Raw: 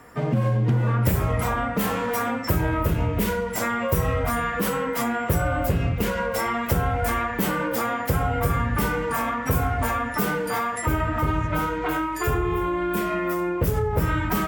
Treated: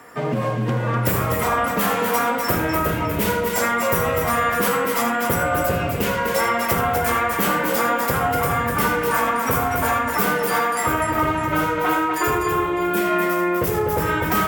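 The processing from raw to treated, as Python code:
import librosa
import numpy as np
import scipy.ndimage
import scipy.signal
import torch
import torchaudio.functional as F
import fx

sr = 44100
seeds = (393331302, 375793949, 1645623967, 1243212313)

y = fx.highpass(x, sr, hz=340.0, slope=6)
y = fx.echo_multitap(y, sr, ms=(78, 249, 605), db=(-9.5, -5.5, -17.0))
y = y * 10.0 ** (5.0 / 20.0)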